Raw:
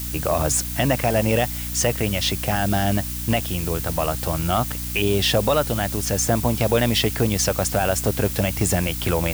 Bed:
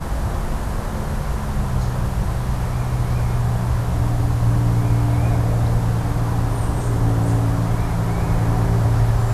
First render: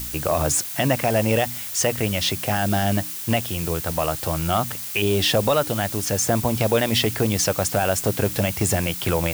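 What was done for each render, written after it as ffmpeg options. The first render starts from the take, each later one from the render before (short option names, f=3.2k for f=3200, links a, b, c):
-af "bandreject=f=60:t=h:w=4,bandreject=f=120:t=h:w=4,bandreject=f=180:t=h:w=4,bandreject=f=240:t=h:w=4,bandreject=f=300:t=h:w=4"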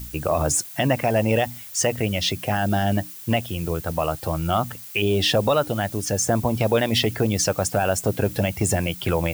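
-af "afftdn=nr=10:nf=-32"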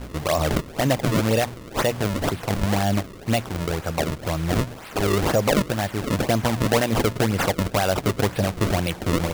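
-af "acrusher=samples=32:mix=1:aa=0.000001:lfo=1:lforange=51.2:lforate=2"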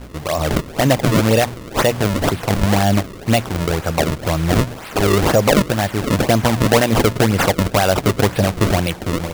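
-af "dynaudnorm=f=110:g=9:m=7dB"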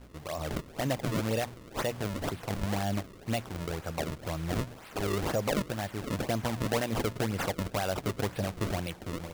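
-af "volume=-16dB"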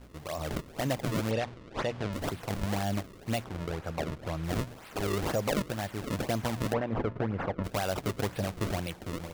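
-filter_complex "[0:a]asettb=1/sr,asplit=3[a][b][c];[a]atrim=end=1.314[d];[b]atrim=start=1.31:end=2.13,asetpts=PTS-STARTPTS,afade=t=in:d=0.004:c=qsin,afade=t=out:st=0.816:d=0.004:c=qsin,lowpass=4.5k[e];[c]atrim=start=2.126[f];[d][e]acrossfade=d=0.004:c1=hsin:c2=qsin[g];[g][f]acrossfade=d=0.004:c1=qsin:c2=hsin,asettb=1/sr,asplit=3[h][i][j];[h]atrim=end=3.444[k];[i]atrim=start=3.44:end=4.44,asetpts=PTS-STARTPTS,afade=t=in:d=0.004:c=qsin,afade=t=out:st=0.996:d=0.004:c=qsin,aemphasis=mode=reproduction:type=cd[l];[j]atrim=start=4.436[m];[k][l]acrossfade=d=0.004:c1=hsin:c2=qsin[n];[n][m]acrossfade=d=0.004:c1=qsin:c2=hsin,asplit=3[o][p][q];[o]afade=t=out:st=6.72:d=0.02[r];[p]lowpass=1.6k,afade=t=in:st=6.72:d=0.02,afade=t=out:st=7.63:d=0.02[s];[q]afade=t=in:st=7.63:d=0.02[t];[r][s][t]amix=inputs=3:normalize=0"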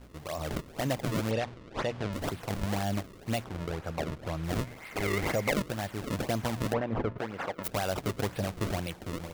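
-filter_complex "[0:a]asettb=1/sr,asplit=3[a][b][c];[a]atrim=end=4.654[d];[b]atrim=start=4.65:end=5.53,asetpts=PTS-STARTPTS,afade=t=in:d=0.004:c=qsin,afade=t=out:st=0.876:d=0.004:c=qsin,equalizer=f=2.1k:t=o:w=0.24:g=14[e];[c]atrim=start=5.526[f];[d][e]acrossfade=d=0.004:c1=hsin:c2=qsin[g];[g][f]acrossfade=d=0.004:c1=qsin:c2=hsin,asettb=1/sr,asplit=3[h][i][j];[h]atrim=end=7.184[k];[i]atrim=start=7.18:end=7.68,asetpts=PTS-STARTPTS,afade=t=in:d=0.004:c=qsin,afade=t=out:st=0.496:d=0.004:c=qsin,aemphasis=mode=production:type=riaa[l];[j]atrim=start=7.676[m];[k][l]acrossfade=d=0.004:c1=hsin:c2=qsin[n];[n][m]acrossfade=d=0.004:c1=qsin:c2=hsin"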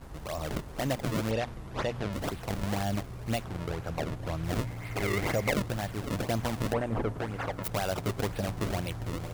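-filter_complex "[1:a]volume=-22dB[a];[0:a][a]amix=inputs=2:normalize=0"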